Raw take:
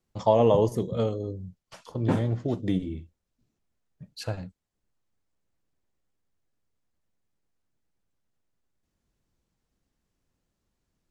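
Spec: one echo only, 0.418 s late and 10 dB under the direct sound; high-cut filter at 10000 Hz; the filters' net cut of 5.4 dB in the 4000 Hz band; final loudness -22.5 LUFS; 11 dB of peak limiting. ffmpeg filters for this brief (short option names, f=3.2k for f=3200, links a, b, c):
-af "lowpass=10k,equalizer=f=4k:t=o:g=-7,alimiter=limit=-20dB:level=0:latency=1,aecho=1:1:418:0.316,volume=9.5dB"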